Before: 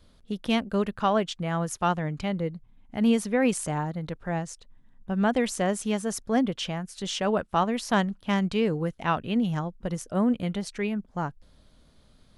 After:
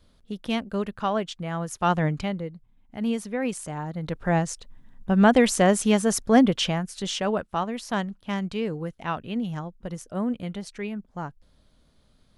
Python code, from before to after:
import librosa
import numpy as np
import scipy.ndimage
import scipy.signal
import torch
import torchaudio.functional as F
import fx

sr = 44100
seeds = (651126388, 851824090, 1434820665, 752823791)

y = fx.gain(x, sr, db=fx.line((1.72, -2.0), (2.04, 7.0), (2.47, -4.5), (3.76, -4.5), (4.24, 7.0), (6.61, 7.0), (7.63, -3.5)))